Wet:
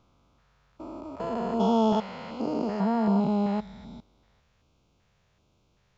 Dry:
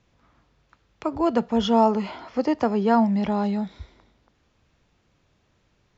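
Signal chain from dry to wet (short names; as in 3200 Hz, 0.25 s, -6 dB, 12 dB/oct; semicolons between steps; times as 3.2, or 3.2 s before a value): stepped spectrum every 0.4 s; LFO notch square 1.3 Hz 300–1800 Hz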